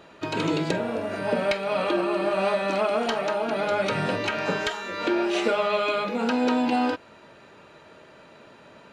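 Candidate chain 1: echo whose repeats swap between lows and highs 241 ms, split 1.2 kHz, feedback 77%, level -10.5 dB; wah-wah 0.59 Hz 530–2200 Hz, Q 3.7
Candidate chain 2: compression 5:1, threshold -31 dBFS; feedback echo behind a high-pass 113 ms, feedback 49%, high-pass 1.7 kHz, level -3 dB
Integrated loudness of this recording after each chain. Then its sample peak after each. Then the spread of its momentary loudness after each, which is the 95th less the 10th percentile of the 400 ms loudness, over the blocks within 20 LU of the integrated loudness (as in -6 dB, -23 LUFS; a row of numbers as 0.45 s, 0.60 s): -33.5 LUFS, -33.0 LUFS; -16.5 dBFS, -18.5 dBFS; 19 LU, 17 LU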